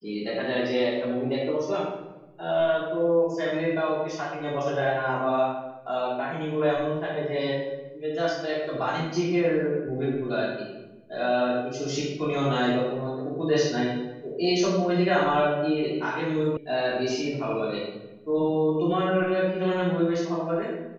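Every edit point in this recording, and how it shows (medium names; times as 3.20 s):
16.57 s: sound stops dead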